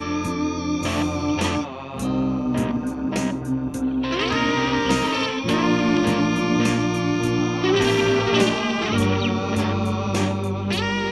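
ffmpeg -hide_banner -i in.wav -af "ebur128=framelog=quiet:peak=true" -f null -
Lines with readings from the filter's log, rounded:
Integrated loudness:
  I:         -21.8 LUFS
  Threshold: -31.7 LUFS
Loudness range:
  LRA:         4.1 LU
  Threshold: -41.4 LUFS
  LRA low:   -24.1 LUFS
  LRA high:  -20.0 LUFS
True peak:
  Peak:       -5.1 dBFS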